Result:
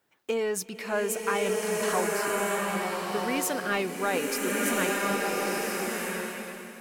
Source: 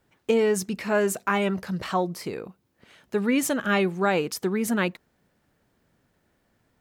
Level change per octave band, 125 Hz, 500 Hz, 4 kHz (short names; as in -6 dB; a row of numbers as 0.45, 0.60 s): -7.0, -2.0, +1.5 dB